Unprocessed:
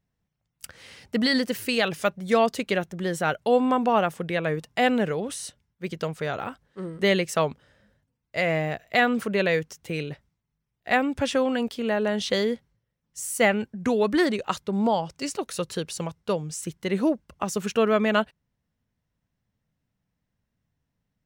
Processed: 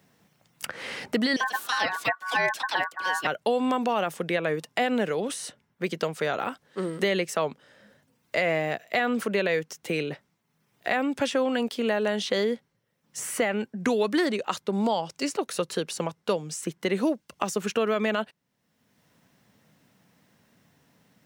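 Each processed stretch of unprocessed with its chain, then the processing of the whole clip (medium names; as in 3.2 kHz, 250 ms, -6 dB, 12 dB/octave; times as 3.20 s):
1.36–3.27 s: phase dispersion lows, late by 51 ms, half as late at 840 Hz + ring modulator 1.3 kHz
whole clip: high-pass 210 Hz 12 dB/octave; peak limiter -14 dBFS; three bands compressed up and down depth 70%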